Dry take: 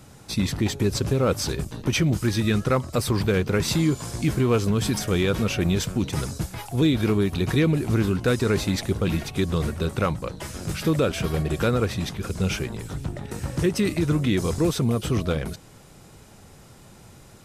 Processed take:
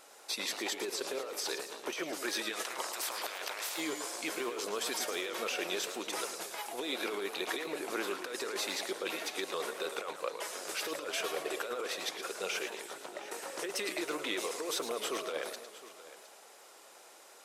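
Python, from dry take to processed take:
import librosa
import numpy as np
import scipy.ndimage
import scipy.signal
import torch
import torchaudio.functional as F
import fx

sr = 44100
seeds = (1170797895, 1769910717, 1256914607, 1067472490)

y = fx.spec_clip(x, sr, under_db=27, at=(2.52, 3.76), fade=0.02)
y = scipy.signal.sosfilt(scipy.signal.butter(4, 450.0, 'highpass', fs=sr, output='sos'), y)
y = fx.over_compress(y, sr, threshold_db=-31.0, ratio=-1.0)
y = fx.vibrato(y, sr, rate_hz=12.0, depth_cents=32.0)
y = y + 10.0 ** (-16.5 / 20.0) * np.pad(y, (int(712 * sr / 1000.0), 0))[:len(y)]
y = fx.echo_warbled(y, sr, ms=111, feedback_pct=41, rate_hz=2.8, cents=155, wet_db=-9.5)
y = F.gain(torch.from_numpy(y), -5.5).numpy()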